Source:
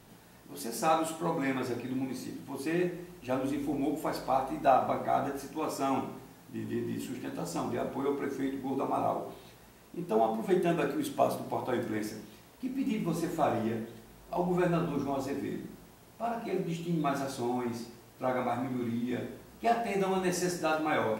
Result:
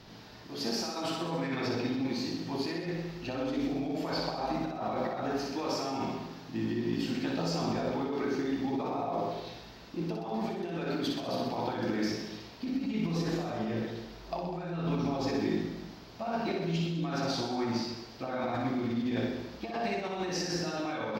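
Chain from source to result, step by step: resonant high shelf 6.7 kHz -12.5 dB, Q 3; compressor with a negative ratio -35 dBFS, ratio -1; reverse bouncing-ball echo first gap 60 ms, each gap 1.1×, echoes 5

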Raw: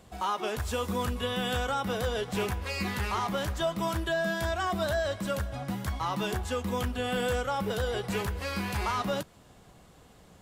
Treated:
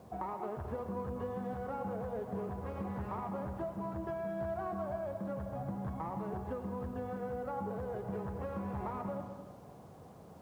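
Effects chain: tracing distortion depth 0.5 ms; Chebyshev band-pass 100–880 Hz, order 2; hum notches 60/120/180/240/300/360 Hz; compression 16:1, threshold -40 dBFS, peak gain reduction 15.5 dB; bit crusher 12-bit; reverberation RT60 1.5 s, pre-delay 80 ms, DRR 6 dB; trim +3.5 dB

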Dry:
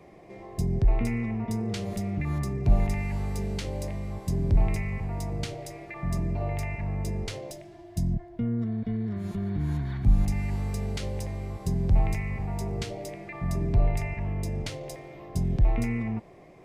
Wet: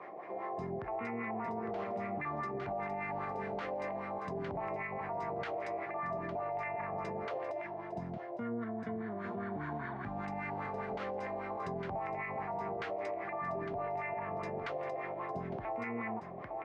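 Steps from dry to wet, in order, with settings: tilt EQ +1.5 dB/octave; on a send: delay 857 ms -11.5 dB; on the sum: LFO low-pass sine 5 Hz 690–1600 Hz; in parallel at -2 dB: compression, threshold -39 dBFS, peak gain reduction 17.5 dB; on the sum: frequency weighting A; peak limiter -31 dBFS, peak gain reduction 9.5 dB; trim +1 dB

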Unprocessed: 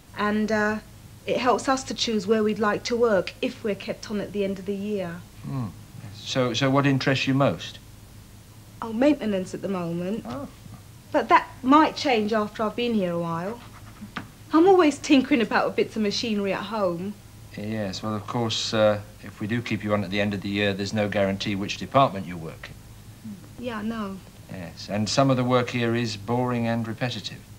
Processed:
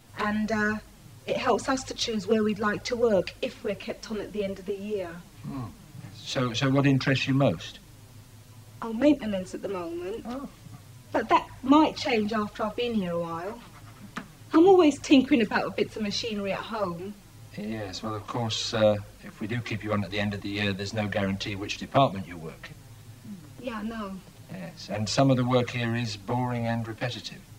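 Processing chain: touch-sensitive flanger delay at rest 9.3 ms, full sweep at -15.5 dBFS

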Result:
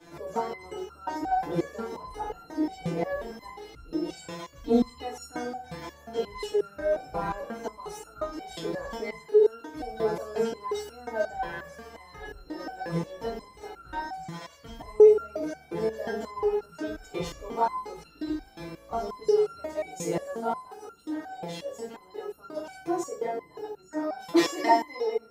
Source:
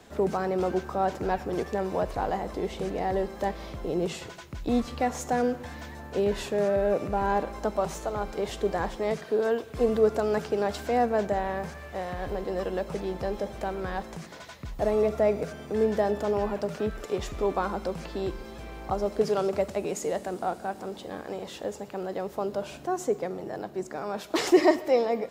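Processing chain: FDN reverb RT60 0.43 s, low-frequency decay 1×, high-frequency decay 0.6×, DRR -9 dB; resonator arpeggio 5.6 Hz 170–1400 Hz; trim +5 dB

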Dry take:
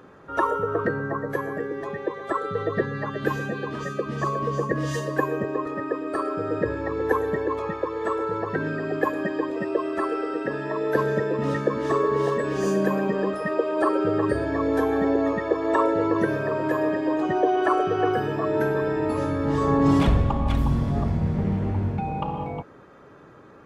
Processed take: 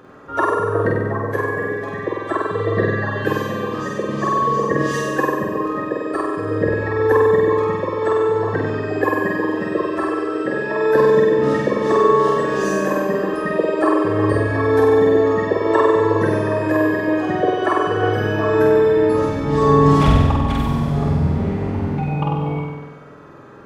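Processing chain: flutter echo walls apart 8.2 m, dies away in 1.2 s; trim +3 dB

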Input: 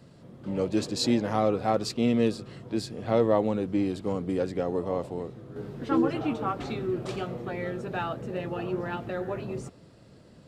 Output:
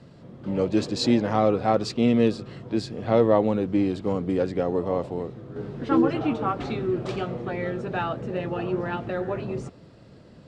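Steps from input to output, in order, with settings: distance through air 73 m; trim +4 dB

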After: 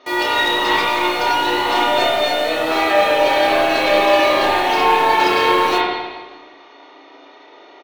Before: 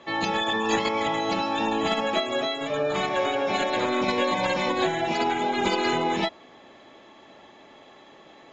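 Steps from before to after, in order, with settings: CVSD coder 64 kbps; FFT band-pass 230–6100 Hz; in parallel at 0 dB: bit crusher 6-bit; on the sum: saturation -14.5 dBFS, distortion -16 dB; doubling 31 ms -5.5 dB; on a send: frequency-shifting echo 91 ms, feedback 43%, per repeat -54 Hz, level -20 dB; on the sum: spring tank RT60 1.4 s, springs 42/58 ms, chirp 65 ms, DRR -5 dB; speed mistake 44.1 kHz file played as 48 kHz

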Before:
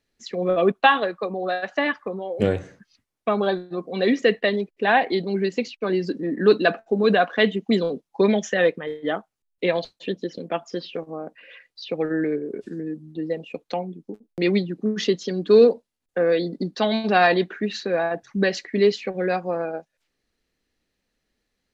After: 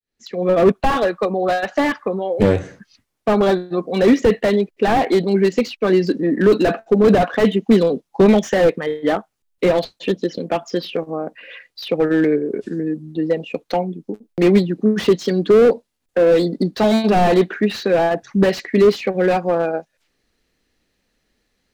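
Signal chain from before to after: fade-in on the opening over 0.67 s; slew-rate limiter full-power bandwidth 64 Hz; trim +8 dB

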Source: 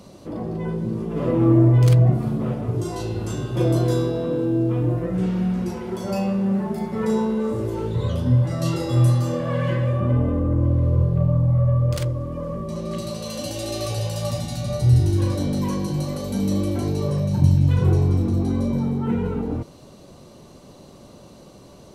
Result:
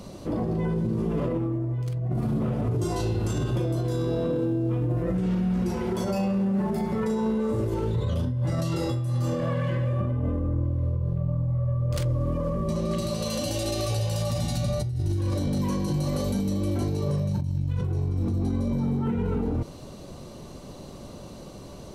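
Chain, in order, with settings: bass shelf 68 Hz +8.5 dB; compressor with a negative ratio -21 dBFS, ratio -1; peak limiter -19 dBFS, peak gain reduction 9.5 dB

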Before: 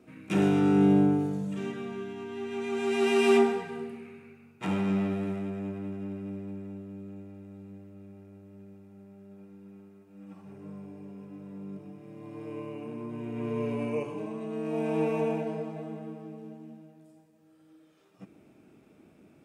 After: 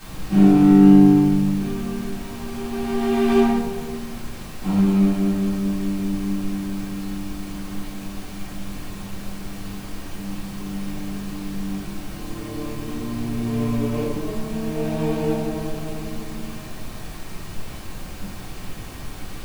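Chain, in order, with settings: median filter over 25 samples; added noise pink -44 dBFS; simulated room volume 640 m³, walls furnished, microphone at 8.8 m; trim -5 dB

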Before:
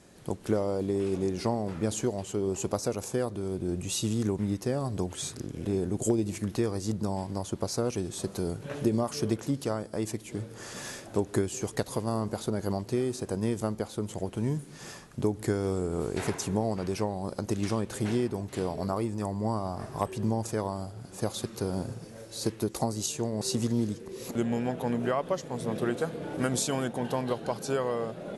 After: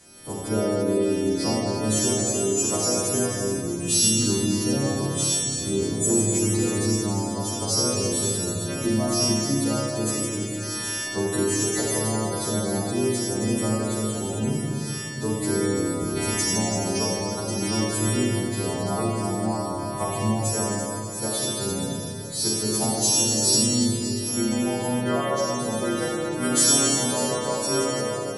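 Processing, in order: partials quantised in pitch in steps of 2 st; Schroeder reverb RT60 2.9 s, combs from 29 ms, DRR -5.5 dB

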